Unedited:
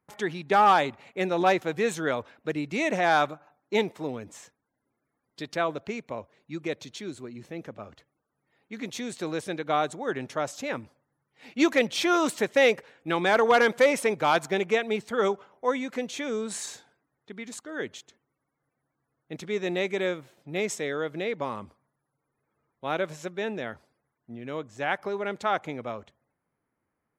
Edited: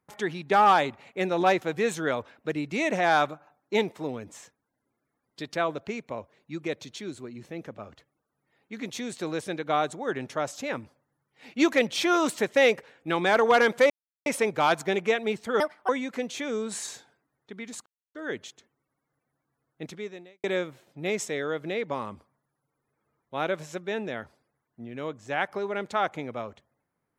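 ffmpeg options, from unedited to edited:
ffmpeg -i in.wav -filter_complex "[0:a]asplit=6[link_01][link_02][link_03][link_04][link_05][link_06];[link_01]atrim=end=13.9,asetpts=PTS-STARTPTS,afade=type=out:start_time=13.896:duration=0.004:curve=hsin,apad=pad_dur=0.36[link_07];[link_02]atrim=start=13.9:end=15.244,asetpts=PTS-STARTPTS,afade=type=in:duration=0.004:curve=hsin[link_08];[link_03]atrim=start=15.24:end=15.68,asetpts=PTS-STARTPTS,asetrate=67473,aresample=44100,atrim=end_sample=12682,asetpts=PTS-STARTPTS[link_09];[link_04]atrim=start=15.676:end=17.65,asetpts=PTS-STARTPTS,afade=type=out:start_time=1.97:duration=0.004:curve=hsin,apad=pad_dur=0.29[link_10];[link_05]atrim=start=17.65:end=19.94,asetpts=PTS-STARTPTS,afade=type=in:duration=0.004:curve=hsin,afade=type=out:start_time=1.69:duration=0.6:curve=qua[link_11];[link_06]atrim=start=19.94,asetpts=PTS-STARTPTS,afade=type=in:duration=0.004:curve=hsin[link_12];[link_07][link_08]concat=n=2:v=0:a=1[link_13];[link_13][link_09]acrossfade=duration=0.004:curve1=hsin:curve2=hsin[link_14];[link_10][link_11][link_12]concat=n=3:v=0:a=1[link_15];[link_14][link_15]acrossfade=duration=0.004:curve1=hsin:curve2=hsin" out.wav

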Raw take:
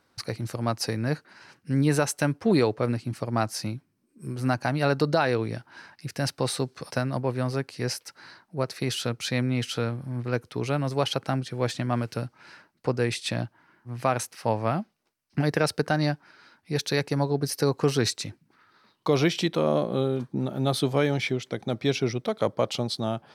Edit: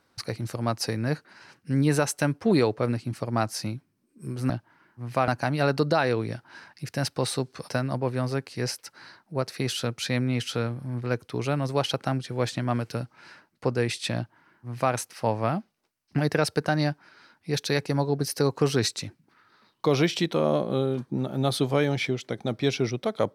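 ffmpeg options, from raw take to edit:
ffmpeg -i in.wav -filter_complex "[0:a]asplit=3[link_01][link_02][link_03];[link_01]atrim=end=4.502[link_04];[link_02]atrim=start=13.378:end=14.162[link_05];[link_03]atrim=start=4.498[link_06];[link_04][link_05]acrossfade=duration=0.004:curve1=hsin:curve2=hsin[link_07];[link_07][link_06]acrossfade=duration=0.004:curve1=hsin:curve2=hsin" out.wav

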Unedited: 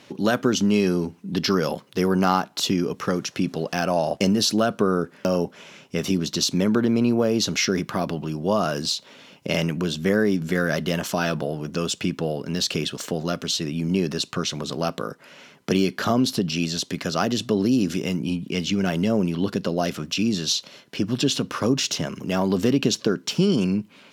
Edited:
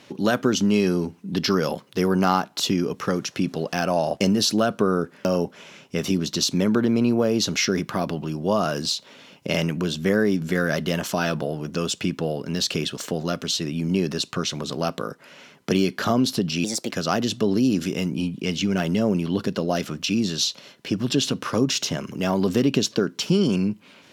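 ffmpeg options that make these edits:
ffmpeg -i in.wav -filter_complex "[0:a]asplit=3[link_01][link_02][link_03];[link_01]atrim=end=16.644[link_04];[link_02]atrim=start=16.64:end=17,asetpts=PTS-STARTPTS,asetrate=57771,aresample=44100,atrim=end_sample=12119,asetpts=PTS-STARTPTS[link_05];[link_03]atrim=start=16.996[link_06];[link_04][link_05]acrossfade=duration=0.004:curve1=hsin:curve2=hsin[link_07];[link_07][link_06]acrossfade=duration=0.004:curve1=hsin:curve2=hsin" out.wav

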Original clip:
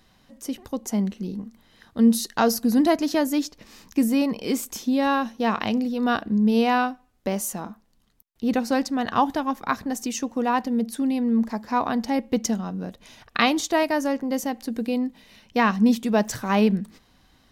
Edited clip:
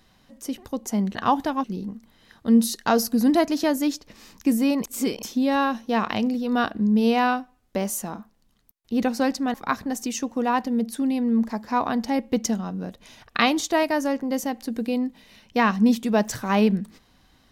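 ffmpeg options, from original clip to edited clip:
ffmpeg -i in.wav -filter_complex "[0:a]asplit=6[link_01][link_02][link_03][link_04][link_05][link_06];[link_01]atrim=end=1.152[link_07];[link_02]atrim=start=9.048:end=9.542[link_08];[link_03]atrim=start=1.148:end=4.352[link_09];[link_04]atrim=start=4.348:end=4.742,asetpts=PTS-STARTPTS,areverse[link_10];[link_05]atrim=start=4.738:end=9.052[link_11];[link_06]atrim=start=9.538[link_12];[link_07][link_08]acrossfade=duration=0.004:curve1=hsin:curve2=hsin[link_13];[link_13][link_09]acrossfade=duration=0.004:curve1=hsin:curve2=hsin[link_14];[link_14][link_10]acrossfade=duration=0.004:curve1=hsin:curve2=hsin[link_15];[link_15][link_11]acrossfade=duration=0.004:curve1=hsin:curve2=hsin[link_16];[link_16][link_12]acrossfade=duration=0.004:curve1=hsin:curve2=hsin" out.wav

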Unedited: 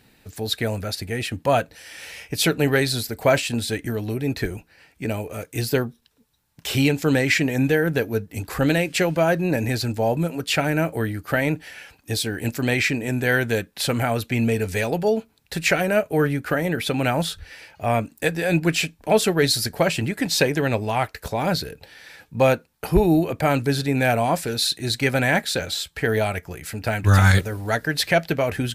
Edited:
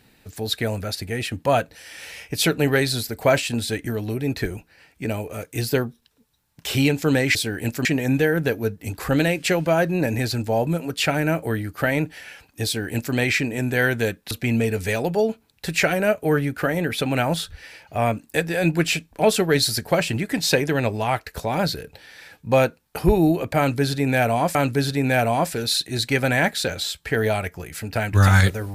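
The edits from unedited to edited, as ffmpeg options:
ffmpeg -i in.wav -filter_complex "[0:a]asplit=5[link_01][link_02][link_03][link_04][link_05];[link_01]atrim=end=7.352[link_06];[link_02]atrim=start=12.148:end=12.652[link_07];[link_03]atrim=start=7.348:end=13.812[link_08];[link_04]atrim=start=14.188:end=24.432[link_09];[link_05]atrim=start=23.458[link_10];[link_06][link_07]acrossfade=duration=0.004:curve1=hsin:curve2=hsin[link_11];[link_11][link_08]acrossfade=duration=0.004:curve1=hsin:curve2=hsin[link_12];[link_12][link_09]acrossfade=duration=0.004:curve1=hsin:curve2=hsin[link_13];[link_13][link_10]acrossfade=duration=0.004:curve1=hsin:curve2=hsin" out.wav

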